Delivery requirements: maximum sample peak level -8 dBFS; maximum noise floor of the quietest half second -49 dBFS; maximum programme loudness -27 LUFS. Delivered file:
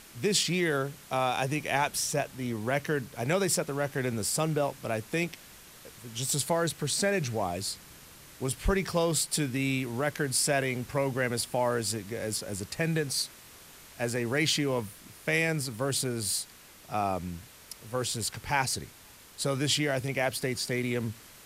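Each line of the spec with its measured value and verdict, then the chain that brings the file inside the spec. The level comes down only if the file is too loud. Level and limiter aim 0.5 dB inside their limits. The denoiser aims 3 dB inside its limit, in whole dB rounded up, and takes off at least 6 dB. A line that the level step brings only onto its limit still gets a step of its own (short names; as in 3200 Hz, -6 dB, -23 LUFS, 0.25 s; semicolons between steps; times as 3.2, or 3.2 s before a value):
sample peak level -13.0 dBFS: OK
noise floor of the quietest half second -53 dBFS: OK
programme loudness -29.5 LUFS: OK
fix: none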